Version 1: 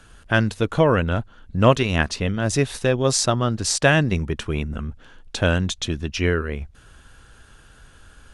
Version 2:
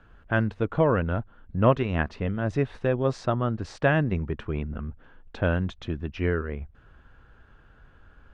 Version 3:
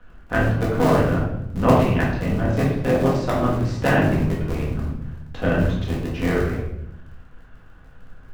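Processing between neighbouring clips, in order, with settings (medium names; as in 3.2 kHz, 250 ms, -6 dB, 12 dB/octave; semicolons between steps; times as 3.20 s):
low-pass 1.8 kHz 12 dB/octave; trim -4.5 dB
cycle switcher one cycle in 3, muted; simulated room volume 220 m³, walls mixed, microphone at 1.9 m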